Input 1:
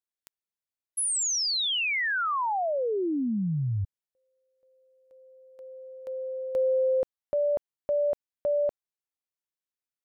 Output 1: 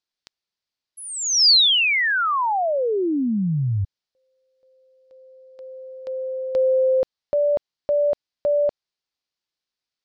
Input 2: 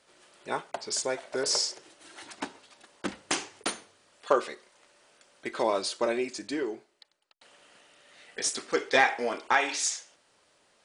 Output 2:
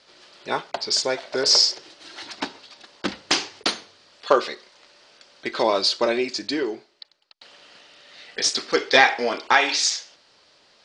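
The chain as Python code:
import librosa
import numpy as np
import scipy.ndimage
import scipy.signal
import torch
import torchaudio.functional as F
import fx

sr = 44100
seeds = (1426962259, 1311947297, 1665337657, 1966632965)

y = fx.lowpass_res(x, sr, hz=4700.0, q=2.6)
y = y * 10.0 ** (6.0 / 20.0)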